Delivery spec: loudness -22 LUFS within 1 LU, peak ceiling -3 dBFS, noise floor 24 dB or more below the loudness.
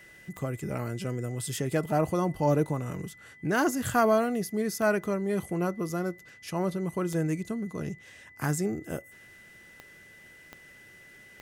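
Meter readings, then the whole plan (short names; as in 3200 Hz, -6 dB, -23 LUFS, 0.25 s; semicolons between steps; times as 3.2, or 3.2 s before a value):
clicks 6; steady tone 2000 Hz; tone level -51 dBFS; loudness -29.5 LUFS; peak -12.0 dBFS; loudness target -22.0 LUFS
-> de-click; notch 2000 Hz, Q 30; gain +7.5 dB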